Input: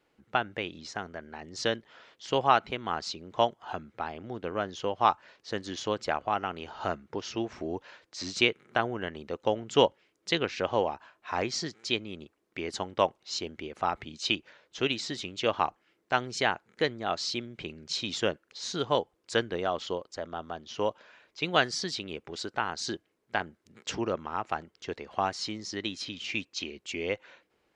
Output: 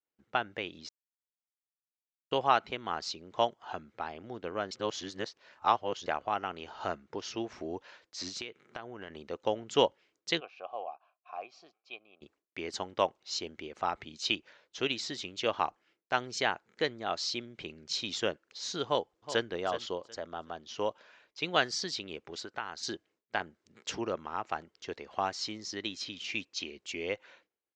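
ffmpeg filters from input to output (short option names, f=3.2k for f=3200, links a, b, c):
-filter_complex "[0:a]asettb=1/sr,asplit=3[a][b][c];[a]atrim=end=8.284[d];[b]atrim=start=8.28:end=9.1,asetpts=PTS-STARTPTS,afade=t=in:d=0.004:c=qsin,afade=t=out:st=0.816:d=0.004:c=qsin,acompressor=threshold=-35dB:ratio=5:attack=3.2:release=140:knee=1:detection=peak[e];[c]atrim=start=9.096[f];[d][e]acrossfade=d=0.004:c1=hsin:c2=qsin[g];[g][f]acrossfade=d=0.004:c1=qsin:c2=hsin,asplit=3[h][i][j];[h]afade=t=out:st=10.39:d=0.02[k];[i]asplit=3[l][m][n];[l]bandpass=f=730:t=q:w=8,volume=0dB[o];[m]bandpass=f=1.09k:t=q:w=8,volume=-6dB[p];[n]bandpass=f=2.44k:t=q:w=8,volume=-9dB[q];[o][p][q]amix=inputs=3:normalize=0,afade=t=in:st=10.39:d=0.02,afade=t=out:st=12.21:d=0.02[r];[j]afade=t=in:st=12.21:d=0.02[s];[k][r][s]amix=inputs=3:normalize=0,asplit=2[t][u];[u]afade=t=in:st=18.85:d=0.01,afade=t=out:st=19.49:d=0.01,aecho=0:1:370|740|1110:0.266073|0.0532145|0.0106429[v];[t][v]amix=inputs=2:normalize=0,asettb=1/sr,asplit=3[w][x][y];[w]atrim=end=22.404[z];[x]atrim=start=22.4:end=22.83,asetpts=PTS-STARTPTS,afade=t=in:d=0.004:c=qsin,afade=t=out:st=0.426:d=0.004:c=qsin,acrossover=split=1000|2800|6600[aa][ab][ac][ad];[aa]acompressor=threshold=-39dB:ratio=3[ae];[ab]acompressor=threshold=-34dB:ratio=3[af];[ac]acompressor=threshold=-50dB:ratio=3[ag];[ad]acompressor=threshold=-58dB:ratio=3[ah];[ae][af][ag][ah]amix=inputs=4:normalize=0[ai];[y]atrim=start=22.826[aj];[z][ai]acrossfade=d=0.004:c1=hsin:c2=qsin[ak];[ak][aj]acrossfade=d=0.004:c1=qsin:c2=hsin,asplit=5[al][am][an][ao][ap];[al]atrim=end=0.89,asetpts=PTS-STARTPTS,afade=t=out:st=0.886:d=0.004:c=hsin[aq];[am]atrim=start=0.89:end=2.31,asetpts=PTS-STARTPTS,volume=0[ar];[an]atrim=start=2.31:end=4.712,asetpts=PTS-STARTPTS,afade=t=in:d=0.004:c=hsin[as];[ao]atrim=start=4.708:end=6.062,asetpts=PTS-STARTPTS,areverse[at];[ap]atrim=start=6.058[au];[aq][ar][as]concat=n=3:v=0:a=1[av];[av][at]acrossfade=d=0.004:c1=hsin:c2=hsin[aw];[aw][au]acrossfade=d=0.004:c1=hsin:c2=hsin,agate=range=-33dB:threshold=-58dB:ratio=3:detection=peak,lowpass=f=7.5k:w=0.5412,lowpass=f=7.5k:w=1.3066,bass=f=250:g=-4,treble=f=4k:g=3,volume=-3dB"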